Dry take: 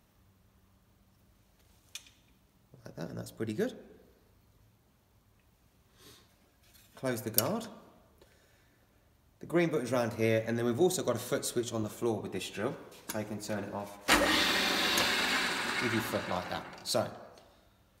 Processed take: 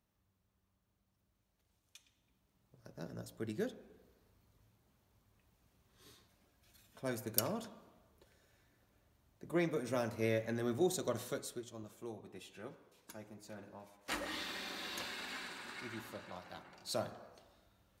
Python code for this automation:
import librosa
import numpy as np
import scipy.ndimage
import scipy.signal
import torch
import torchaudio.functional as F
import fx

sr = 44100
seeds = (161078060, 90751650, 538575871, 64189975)

y = fx.gain(x, sr, db=fx.line((1.96, -15.0), (3.06, -6.0), (11.21, -6.0), (11.69, -15.0), (16.46, -15.0), (17.11, -5.5)))